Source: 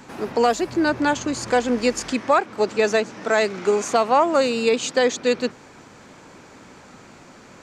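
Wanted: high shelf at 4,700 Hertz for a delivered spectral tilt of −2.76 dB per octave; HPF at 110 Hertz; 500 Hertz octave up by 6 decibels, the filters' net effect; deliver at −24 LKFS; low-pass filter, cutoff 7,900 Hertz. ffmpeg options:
ffmpeg -i in.wav -af "highpass=110,lowpass=7900,equalizer=frequency=500:width_type=o:gain=7,highshelf=frequency=4700:gain=-4,volume=-7.5dB" out.wav

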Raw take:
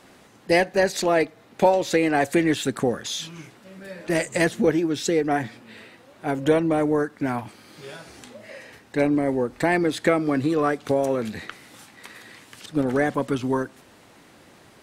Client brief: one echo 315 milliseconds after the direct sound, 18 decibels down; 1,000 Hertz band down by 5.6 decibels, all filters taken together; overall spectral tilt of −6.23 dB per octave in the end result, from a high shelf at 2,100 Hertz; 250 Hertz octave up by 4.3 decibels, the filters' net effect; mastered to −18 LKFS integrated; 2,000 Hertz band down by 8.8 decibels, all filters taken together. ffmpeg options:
ffmpeg -i in.wav -af "equalizer=frequency=250:width_type=o:gain=6.5,equalizer=frequency=1000:width_type=o:gain=-7,equalizer=frequency=2000:width_type=o:gain=-4.5,highshelf=frequency=2100:gain=-7.5,aecho=1:1:315:0.126,volume=4dB" out.wav

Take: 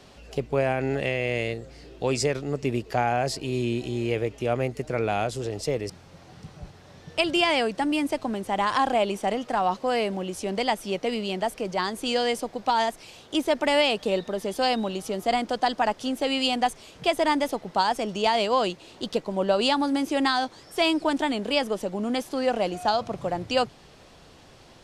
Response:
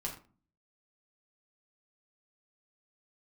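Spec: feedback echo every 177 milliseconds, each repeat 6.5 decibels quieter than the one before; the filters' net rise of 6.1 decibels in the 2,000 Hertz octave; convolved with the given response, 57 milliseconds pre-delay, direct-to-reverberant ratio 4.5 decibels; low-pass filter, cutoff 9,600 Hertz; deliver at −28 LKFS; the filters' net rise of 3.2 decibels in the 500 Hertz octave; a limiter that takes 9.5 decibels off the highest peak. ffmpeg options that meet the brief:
-filter_complex "[0:a]lowpass=9600,equalizer=frequency=500:width_type=o:gain=3.5,equalizer=frequency=2000:width_type=o:gain=7.5,alimiter=limit=-14.5dB:level=0:latency=1,aecho=1:1:177|354|531|708|885|1062:0.473|0.222|0.105|0.0491|0.0231|0.0109,asplit=2[link_01][link_02];[1:a]atrim=start_sample=2205,adelay=57[link_03];[link_02][link_03]afir=irnorm=-1:irlink=0,volume=-5.5dB[link_04];[link_01][link_04]amix=inputs=2:normalize=0,volume=-4.5dB"

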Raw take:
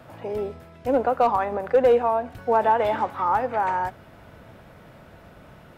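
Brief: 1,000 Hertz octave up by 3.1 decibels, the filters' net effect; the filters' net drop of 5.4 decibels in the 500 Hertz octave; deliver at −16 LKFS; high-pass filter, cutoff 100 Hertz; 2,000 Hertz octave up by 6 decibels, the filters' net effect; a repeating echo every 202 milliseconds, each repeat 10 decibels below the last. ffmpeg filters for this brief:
ffmpeg -i in.wav -af "highpass=100,equalizer=frequency=500:width_type=o:gain=-8.5,equalizer=frequency=1000:width_type=o:gain=5.5,equalizer=frequency=2000:width_type=o:gain=6.5,aecho=1:1:202|404|606|808:0.316|0.101|0.0324|0.0104,volume=5.5dB" out.wav

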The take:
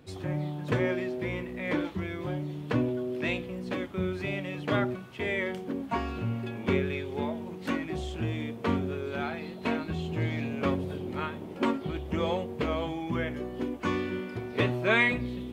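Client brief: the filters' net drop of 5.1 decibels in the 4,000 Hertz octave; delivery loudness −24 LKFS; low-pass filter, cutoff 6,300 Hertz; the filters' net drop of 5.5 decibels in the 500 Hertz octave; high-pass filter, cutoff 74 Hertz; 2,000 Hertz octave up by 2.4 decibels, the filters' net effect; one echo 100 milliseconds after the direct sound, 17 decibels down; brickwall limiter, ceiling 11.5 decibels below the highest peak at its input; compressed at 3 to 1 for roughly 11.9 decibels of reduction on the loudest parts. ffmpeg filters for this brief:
ffmpeg -i in.wav -af "highpass=74,lowpass=6300,equalizer=frequency=500:width_type=o:gain=-8,equalizer=frequency=2000:width_type=o:gain=5.5,equalizer=frequency=4000:width_type=o:gain=-9,acompressor=threshold=-34dB:ratio=3,alimiter=level_in=8.5dB:limit=-24dB:level=0:latency=1,volume=-8.5dB,aecho=1:1:100:0.141,volume=17dB" out.wav

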